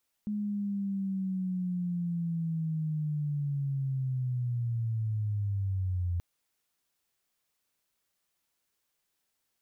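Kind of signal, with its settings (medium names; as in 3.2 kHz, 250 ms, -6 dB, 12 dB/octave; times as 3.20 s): sweep linear 210 Hz -> 86 Hz -29.5 dBFS -> -27.5 dBFS 5.93 s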